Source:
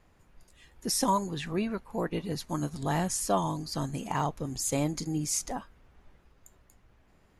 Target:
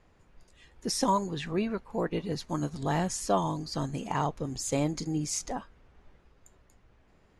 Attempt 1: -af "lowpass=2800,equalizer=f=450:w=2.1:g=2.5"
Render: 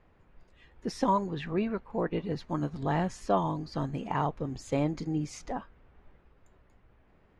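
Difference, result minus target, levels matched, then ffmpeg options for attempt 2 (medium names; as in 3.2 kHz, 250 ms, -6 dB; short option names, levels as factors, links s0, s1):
8 kHz band -13.5 dB
-af "lowpass=7400,equalizer=f=450:w=2.1:g=2.5"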